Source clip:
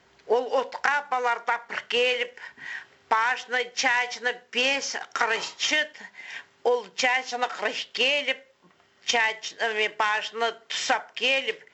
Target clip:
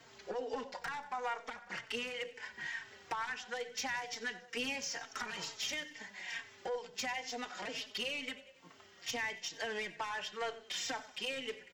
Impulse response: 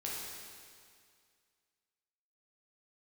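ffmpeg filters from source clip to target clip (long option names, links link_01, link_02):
-filter_complex "[0:a]highshelf=frequency=5000:gain=8,acrossover=split=220[link_01][link_02];[link_02]acompressor=threshold=-40dB:ratio=3[link_03];[link_01][link_03]amix=inputs=2:normalize=0,aeval=exprs='(tanh(35.5*val(0)+0.05)-tanh(0.05))/35.5':channel_layout=same,asplit=2[link_04][link_05];[link_05]aecho=0:1:93|186|279|372|465:0.141|0.0763|0.0412|0.0222|0.012[link_06];[link_04][link_06]amix=inputs=2:normalize=0,asplit=2[link_07][link_08];[link_08]adelay=3.9,afreqshift=-2.2[link_09];[link_07][link_09]amix=inputs=2:normalize=1,volume=3dB"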